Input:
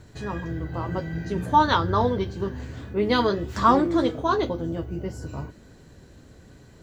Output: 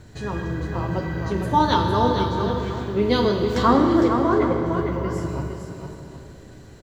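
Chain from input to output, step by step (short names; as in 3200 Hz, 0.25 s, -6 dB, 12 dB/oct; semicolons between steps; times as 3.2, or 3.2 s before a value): 3.62–4.66 resonant high shelf 2700 Hz -9.5 dB, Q 3; on a send: tapped delay 0.457/0.764 s -7/-16.5 dB; on the sum: dynamic EQ 1400 Hz, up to -7 dB, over -33 dBFS, Q 0.74; Schroeder reverb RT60 2.8 s, combs from 26 ms, DRR 4 dB; gain +2.5 dB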